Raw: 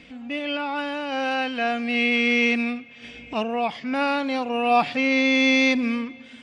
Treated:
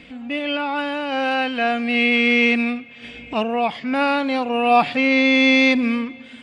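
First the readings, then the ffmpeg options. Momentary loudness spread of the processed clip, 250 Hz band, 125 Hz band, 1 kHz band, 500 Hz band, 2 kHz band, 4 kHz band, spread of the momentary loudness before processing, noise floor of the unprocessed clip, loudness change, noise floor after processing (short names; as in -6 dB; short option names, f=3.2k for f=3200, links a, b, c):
12 LU, +4.0 dB, +4.0 dB, +4.0 dB, +4.0 dB, +4.0 dB, +3.5 dB, 12 LU, -46 dBFS, +4.0 dB, -42 dBFS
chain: -af "equalizer=f=5.8k:t=o:w=0.41:g=-7.5,volume=4dB"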